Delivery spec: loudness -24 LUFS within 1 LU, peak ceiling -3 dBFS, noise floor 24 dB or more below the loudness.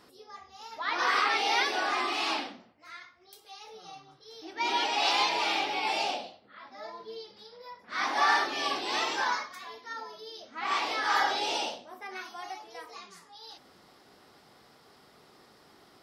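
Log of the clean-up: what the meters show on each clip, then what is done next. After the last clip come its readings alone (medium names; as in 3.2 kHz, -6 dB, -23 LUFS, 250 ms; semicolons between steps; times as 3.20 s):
loudness -28.5 LUFS; peak level -13.0 dBFS; loudness target -24.0 LUFS
-> trim +4.5 dB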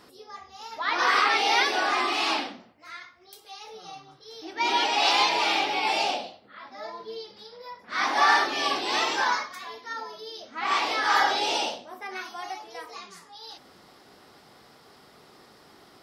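loudness -24.0 LUFS; peak level -8.5 dBFS; noise floor -55 dBFS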